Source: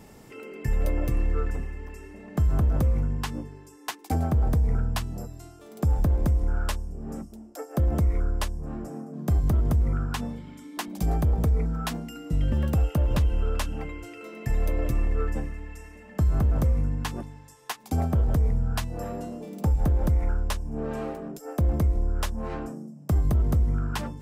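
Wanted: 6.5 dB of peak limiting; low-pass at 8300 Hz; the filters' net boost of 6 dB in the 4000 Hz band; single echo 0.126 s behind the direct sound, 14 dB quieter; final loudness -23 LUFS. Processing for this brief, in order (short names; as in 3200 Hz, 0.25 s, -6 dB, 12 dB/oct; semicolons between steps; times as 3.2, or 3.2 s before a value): LPF 8300 Hz; bell 4000 Hz +8 dB; limiter -20.5 dBFS; echo 0.126 s -14 dB; gain +8 dB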